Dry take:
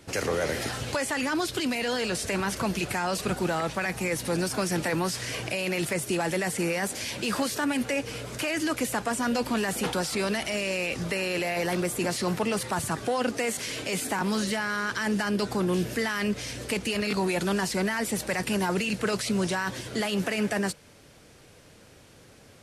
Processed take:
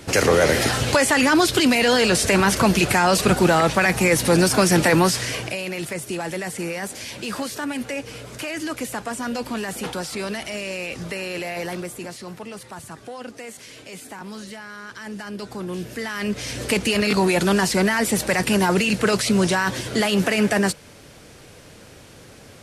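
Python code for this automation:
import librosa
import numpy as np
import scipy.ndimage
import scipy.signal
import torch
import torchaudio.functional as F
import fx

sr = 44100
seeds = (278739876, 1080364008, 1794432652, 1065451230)

y = fx.gain(x, sr, db=fx.line((5.03, 11.0), (5.7, -0.5), (11.62, -0.5), (12.25, -8.5), (14.8, -8.5), (15.94, -2.5), (16.65, 8.0)))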